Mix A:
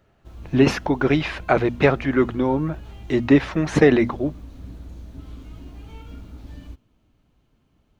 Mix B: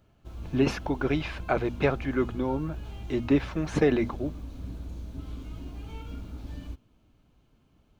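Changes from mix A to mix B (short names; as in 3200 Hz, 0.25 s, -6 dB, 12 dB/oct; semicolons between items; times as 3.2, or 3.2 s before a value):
speech -8.0 dB; master: add notch 1900 Hz, Q 11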